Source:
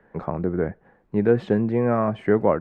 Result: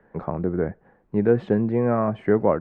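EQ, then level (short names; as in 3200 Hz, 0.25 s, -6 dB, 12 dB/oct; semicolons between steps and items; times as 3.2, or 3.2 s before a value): high shelf 3000 Hz -9 dB; 0.0 dB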